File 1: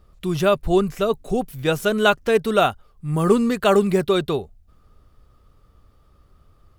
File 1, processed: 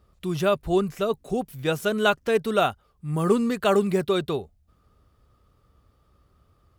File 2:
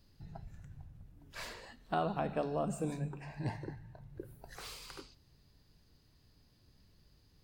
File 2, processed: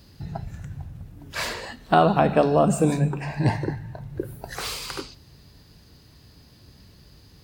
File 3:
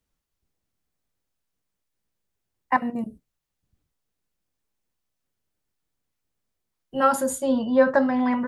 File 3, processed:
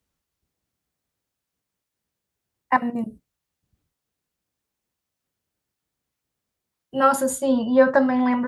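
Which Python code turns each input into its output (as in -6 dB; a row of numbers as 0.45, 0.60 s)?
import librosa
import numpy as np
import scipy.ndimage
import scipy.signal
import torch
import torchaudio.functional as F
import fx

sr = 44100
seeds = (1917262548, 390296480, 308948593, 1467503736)

y = scipy.signal.sosfilt(scipy.signal.butter(2, 49.0, 'highpass', fs=sr, output='sos'), x)
y = y * 10.0 ** (-26 / 20.0) / np.sqrt(np.mean(np.square(y)))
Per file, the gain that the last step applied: -4.0, +16.5, +2.0 dB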